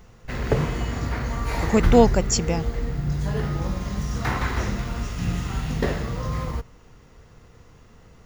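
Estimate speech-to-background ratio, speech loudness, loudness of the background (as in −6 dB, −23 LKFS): 5.5 dB, −21.5 LKFS, −27.0 LKFS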